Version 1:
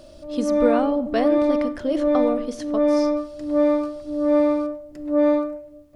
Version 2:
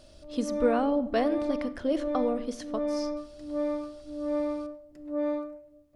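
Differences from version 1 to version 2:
speech -4.0 dB; background -11.5 dB

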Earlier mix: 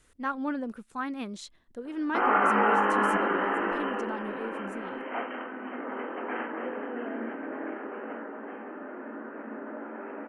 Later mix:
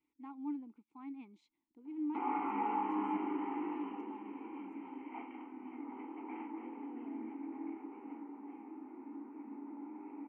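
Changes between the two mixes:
speech -5.5 dB; master: add vowel filter u

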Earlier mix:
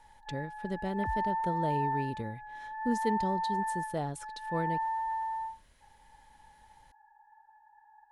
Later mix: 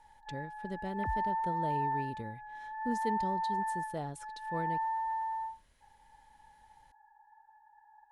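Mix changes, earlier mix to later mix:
speech -4.5 dB; first sound: add air absorption 230 m

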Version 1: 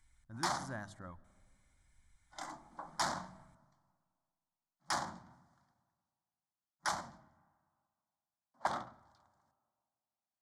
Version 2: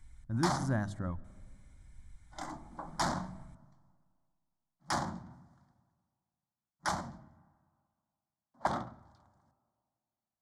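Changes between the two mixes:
speech +4.0 dB; master: add low shelf 480 Hz +12 dB

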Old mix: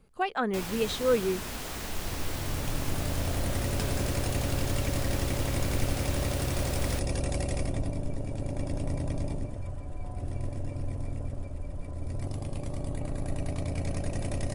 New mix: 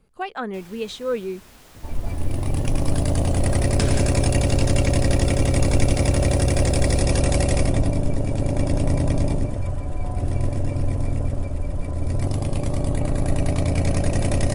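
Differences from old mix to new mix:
first sound -10.5 dB; second sound +11.5 dB; reverb: off

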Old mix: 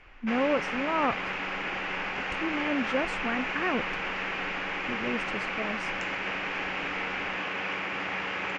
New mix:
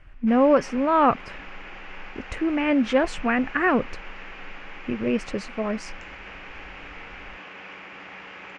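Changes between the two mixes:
speech +9.0 dB; background -9.0 dB

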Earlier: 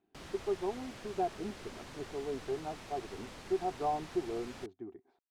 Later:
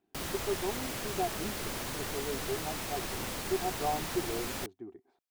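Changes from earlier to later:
background +10.0 dB; master: remove air absorption 66 m

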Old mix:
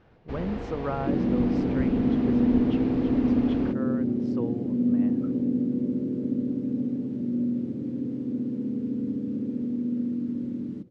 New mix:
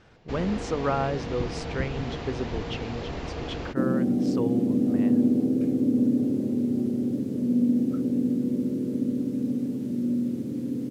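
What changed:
speech +3.0 dB; second sound: entry +2.70 s; master: remove tape spacing loss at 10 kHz 24 dB

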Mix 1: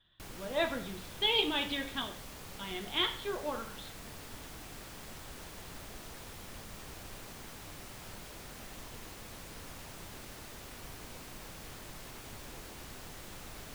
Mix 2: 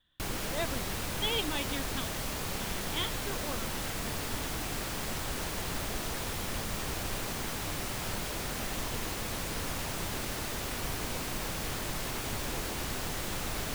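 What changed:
background +12.0 dB; reverb: off

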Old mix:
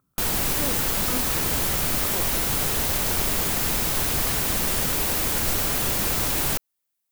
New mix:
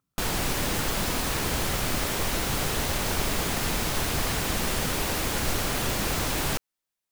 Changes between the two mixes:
speech -9.5 dB; background: add high shelf 9600 Hz -12 dB

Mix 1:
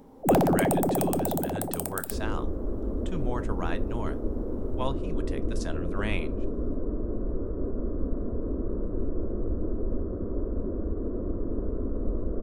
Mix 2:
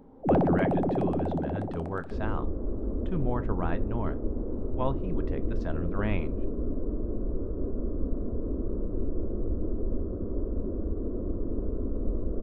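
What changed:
speech +4.5 dB; master: add tape spacing loss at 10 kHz 42 dB

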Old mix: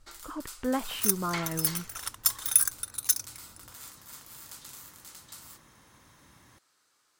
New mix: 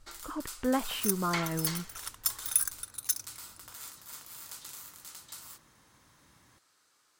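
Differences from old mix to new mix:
second sound -7.5 dB; reverb: on

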